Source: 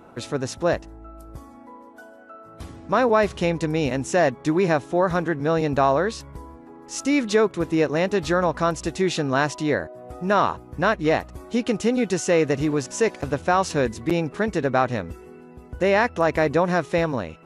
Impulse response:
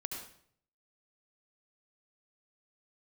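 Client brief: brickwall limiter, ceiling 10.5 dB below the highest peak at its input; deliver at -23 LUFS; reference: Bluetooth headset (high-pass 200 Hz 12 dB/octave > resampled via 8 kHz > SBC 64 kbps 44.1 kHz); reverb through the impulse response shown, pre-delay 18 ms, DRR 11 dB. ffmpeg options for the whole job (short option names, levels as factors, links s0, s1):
-filter_complex "[0:a]alimiter=limit=0.133:level=0:latency=1,asplit=2[s0][s1];[1:a]atrim=start_sample=2205,adelay=18[s2];[s1][s2]afir=irnorm=-1:irlink=0,volume=0.282[s3];[s0][s3]amix=inputs=2:normalize=0,highpass=200,aresample=8000,aresample=44100,volume=2" -ar 44100 -c:a sbc -b:a 64k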